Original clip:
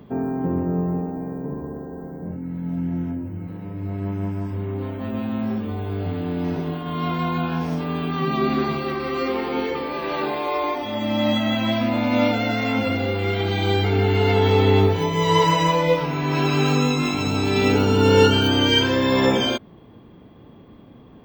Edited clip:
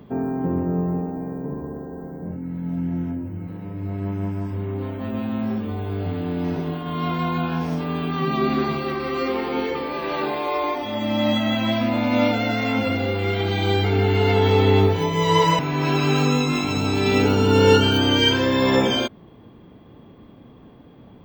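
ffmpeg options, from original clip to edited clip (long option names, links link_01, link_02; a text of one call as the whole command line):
ffmpeg -i in.wav -filter_complex "[0:a]asplit=2[link_01][link_02];[link_01]atrim=end=15.592[link_03];[link_02]atrim=start=16.088[link_04];[link_03][link_04]acrossfade=duration=0.004:curve1=hsin:curve2=hsin" out.wav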